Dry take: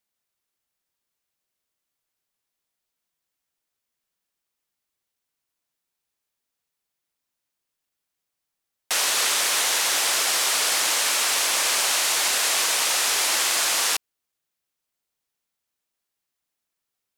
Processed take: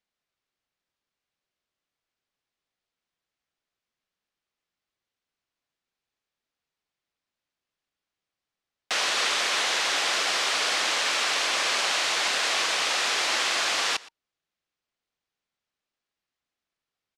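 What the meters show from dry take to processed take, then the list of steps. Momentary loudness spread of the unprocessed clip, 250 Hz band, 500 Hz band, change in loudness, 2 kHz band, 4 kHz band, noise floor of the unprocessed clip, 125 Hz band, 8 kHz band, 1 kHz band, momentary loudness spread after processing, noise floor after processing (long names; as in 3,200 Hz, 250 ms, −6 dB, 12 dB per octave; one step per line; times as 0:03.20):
1 LU, 0.0 dB, 0.0 dB, −3.5 dB, 0.0 dB, −2.0 dB, −83 dBFS, can't be measured, −9.0 dB, −0.5 dB, 1 LU, below −85 dBFS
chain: low-pass filter 4,600 Hz 12 dB per octave
notch filter 920 Hz, Q 22
on a send: single-tap delay 118 ms −21.5 dB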